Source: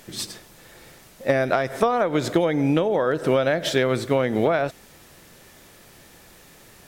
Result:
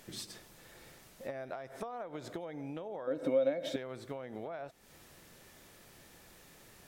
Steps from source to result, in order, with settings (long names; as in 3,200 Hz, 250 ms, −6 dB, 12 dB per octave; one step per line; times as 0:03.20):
dynamic equaliser 770 Hz, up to +6 dB, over −33 dBFS, Q 1.3
downward compressor 6 to 1, threshold −32 dBFS, peak gain reduction 18.5 dB
0:03.07–0:03.76: hollow resonant body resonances 280/530/2,200/3,700 Hz, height 18 dB, ringing for 95 ms
level −8.5 dB